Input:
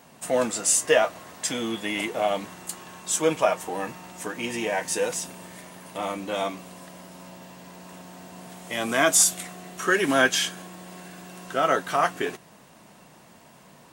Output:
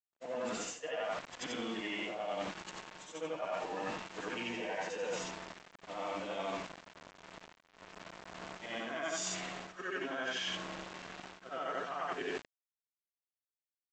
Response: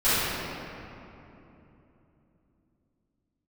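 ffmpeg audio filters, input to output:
-af "afftfilt=real='re':imag='-im':win_size=8192:overlap=0.75,adynamicequalizer=threshold=0.002:dfrequency=2900:dqfactor=6:tfrequency=2900:tqfactor=6:attack=5:release=100:ratio=0.375:range=2.5:mode=boostabove:tftype=bell,aresample=16000,acrusher=bits=6:mix=0:aa=0.000001,aresample=44100,bass=f=250:g=-5,treble=f=4000:g=-11,areverse,acompressor=threshold=0.0126:ratio=12,areverse,agate=range=0.0224:threshold=0.00631:ratio=3:detection=peak,volume=1.41"

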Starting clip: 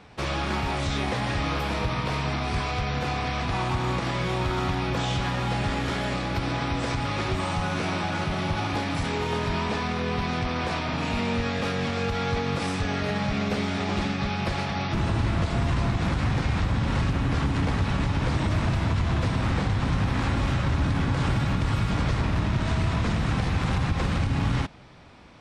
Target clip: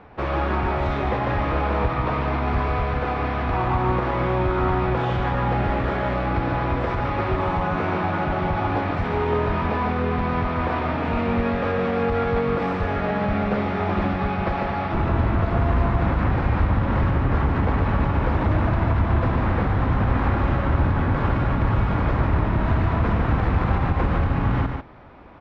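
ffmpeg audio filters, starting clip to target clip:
-filter_complex "[0:a]lowpass=1500,equalizer=f=150:t=o:w=1.3:g=-6.5,asplit=2[s0][s1];[s1]aecho=0:1:146:0.531[s2];[s0][s2]amix=inputs=2:normalize=0,volume=2"

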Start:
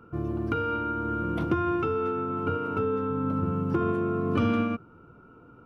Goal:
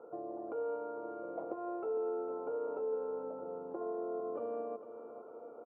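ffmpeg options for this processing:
-af "acompressor=threshold=0.0126:ratio=4,asuperpass=centerf=600:order=4:qfactor=1.9,aecho=1:1:454|908|1362|1816|2270|2724:0.266|0.144|0.0776|0.0419|0.0226|0.0122,volume=3.35"

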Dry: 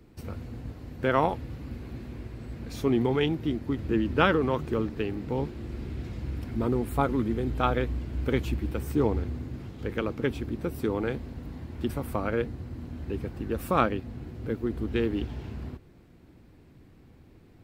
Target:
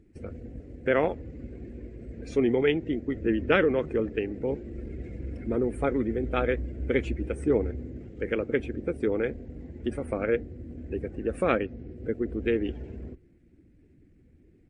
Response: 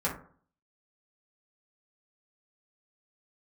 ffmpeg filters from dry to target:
-af "afftdn=nr=13:nf=-47,equalizer=f=125:t=o:w=1:g=-6,equalizer=f=500:t=o:w=1:g=7,equalizer=f=1000:t=o:w=1:g=-12,equalizer=f=2000:t=o:w=1:g=10,equalizer=f=4000:t=o:w=1:g=-7,equalizer=f=8000:t=o:w=1:g=4,atempo=1.2" -ar 24000 -c:a libmp3lame -b:a 40k

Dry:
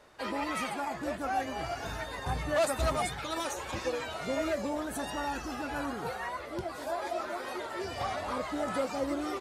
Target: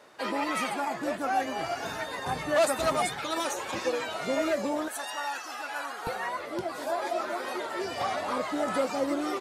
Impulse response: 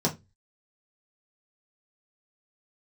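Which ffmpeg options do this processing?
-af "asetnsamples=n=441:p=0,asendcmd='4.88 highpass f 830;6.07 highpass f 170',highpass=180,volume=1.58"

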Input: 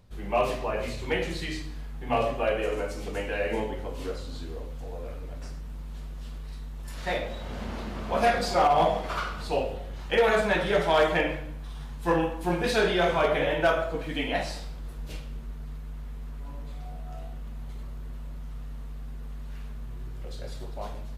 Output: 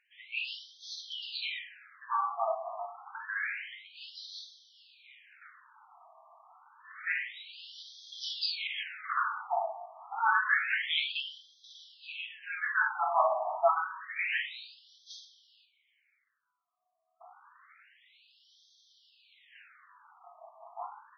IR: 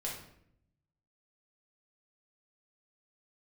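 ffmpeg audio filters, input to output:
-filter_complex "[0:a]asettb=1/sr,asplit=3[s0][s1][s2];[s0]atrim=end=15.654[s3];[s1]atrim=start=15.65:end=17.21,asetpts=PTS-STARTPTS,afade=t=in:d=0.004:c=qsin,afade=t=out:st=1.556:d=0.004:c=qsin,asplit=3[s4][s5][s6];[s4]bandpass=f=270:t=q:w=8,volume=1[s7];[s5]bandpass=f=2290:t=q:w=8,volume=0.501[s8];[s6]bandpass=f=3010:t=q:w=8,volume=0.355[s9];[s7][s8][s9]amix=inputs=3:normalize=0[s10];[s2]atrim=start=17.206[s11];[s3][s10]acrossfade=d=0.004:c1=hsin:c2=qsin[s12];[s12][s11]acrossfade=d=0.004:c1=qsin:c2=hsin,asplit=2[s13][s14];[s14]aemphasis=mode=production:type=50fm[s15];[1:a]atrim=start_sample=2205,atrim=end_sample=6174[s16];[s15][s16]afir=irnorm=-1:irlink=0,volume=0.562[s17];[s13][s17]amix=inputs=2:normalize=0,afftfilt=real='re*between(b*sr/1024,870*pow(4500/870,0.5+0.5*sin(2*PI*0.28*pts/sr))/1.41,870*pow(4500/870,0.5+0.5*sin(2*PI*0.28*pts/sr))*1.41)':imag='im*between(b*sr/1024,870*pow(4500/870,0.5+0.5*sin(2*PI*0.28*pts/sr))/1.41,870*pow(4500/870,0.5+0.5*sin(2*PI*0.28*pts/sr))*1.41)':win_size=1024:overlap=0.75"

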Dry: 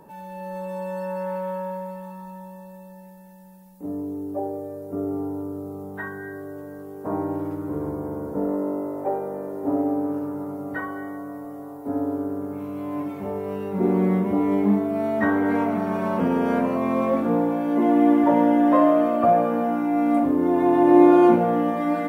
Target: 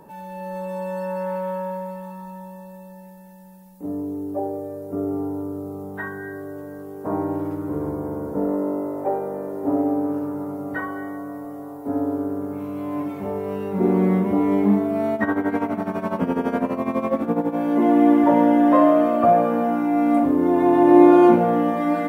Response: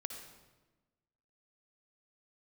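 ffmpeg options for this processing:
-filter_complex "[0:a]asettb=1/sr,asplit=3[s0][s1][s2];[s0]atrim=end=15.144[s3];[s1]atrim=start=15.14:end=17.56,asetpts=PTS-STARTPTS,afade=t=in:d=0.004:c=qsin,afade=t=out:st=2.416:d=0.004:c=qsin,tremolo=f=12:d=0.73[s4];[s2]atrim=start=17.556[s5];[s3][s4]acrossfade=d=0.004:c1=hsin:c2=qsin[s6];[s6][s5]acrossfade=d=0.004:c1=qsin:c2=hsin,volume=1.26"

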